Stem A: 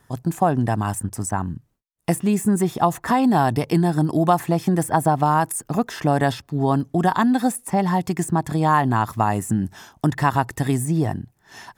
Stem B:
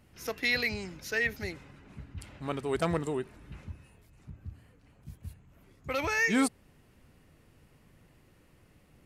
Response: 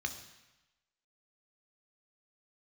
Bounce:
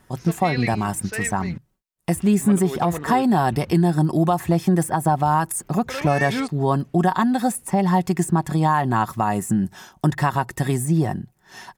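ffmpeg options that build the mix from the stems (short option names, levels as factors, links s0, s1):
-filter_complex "[0:a]aecho=1:1:5.4:0.4,volume=1[s0];[1:a]lowpass=5300,volume=1.12,asplit=3[s1][s2][s3];[s1]atrim=end=1.58,asetpts=PTS-STARTPTS,afade=t=out:st=1.576:d=0.004:c=hsin[s4];[s2]atrim=start=1.58:end=2.1,asetpts=PTS-STARTPTS,volume=0[s5];[s3]atrim=start=2.1,asetpts=PTS-STARTPTS,afade=t=in:d=0.004:c=hsin[s6];[s4][s5][s6]concat=n=3:v=0:a=1[s7];[s0][s7]amix=inputs=2:normalize=0,alimiter=limit=0.376:level=0:latency=1:release=169"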